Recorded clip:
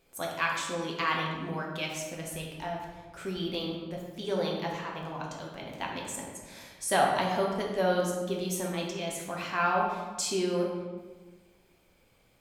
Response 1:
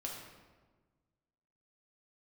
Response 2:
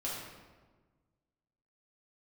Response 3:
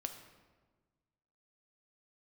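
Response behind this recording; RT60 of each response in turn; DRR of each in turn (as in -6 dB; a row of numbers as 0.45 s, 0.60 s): 1; 1.4 s, 1.4 s, 1.4 s; -2.0 dB, -7.0 dB, 5.5 dB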